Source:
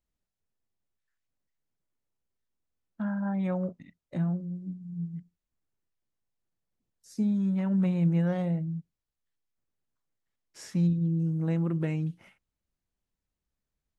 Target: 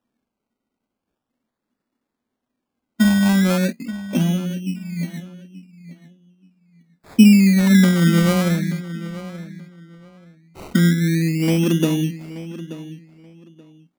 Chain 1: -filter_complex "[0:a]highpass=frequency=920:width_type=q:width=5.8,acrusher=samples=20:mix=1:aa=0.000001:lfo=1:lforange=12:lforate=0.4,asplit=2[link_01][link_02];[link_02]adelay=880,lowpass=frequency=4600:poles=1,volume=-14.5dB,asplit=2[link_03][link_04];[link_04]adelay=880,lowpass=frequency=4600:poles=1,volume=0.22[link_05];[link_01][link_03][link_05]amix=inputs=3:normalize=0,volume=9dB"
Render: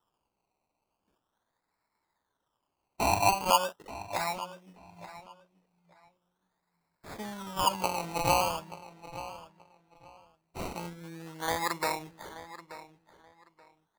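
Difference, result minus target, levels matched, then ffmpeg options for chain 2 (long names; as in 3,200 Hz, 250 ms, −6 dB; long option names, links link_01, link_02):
1,000 Hz band +19.0 dB
-filter_complex "[0:a]highpass=frequency=240:width_type=q:width=5.8,acrusher=samples=20:mix=1:aa=0.000001:lfo=1:lforange=12:lforate=0.4,asplit=2[link_01][link_02];[link_02]adelay=880,lowpass=frequency=4600:poles=1,volume=-14.5dB,asplit=2[link_03][link_04];[link_04]adelay=880,lowpass=frequency=4600:poles=1,volume=0.22[link_05];[link_01][link_03][link_05]amix=inputs=3:normalize=0,volume=9dB"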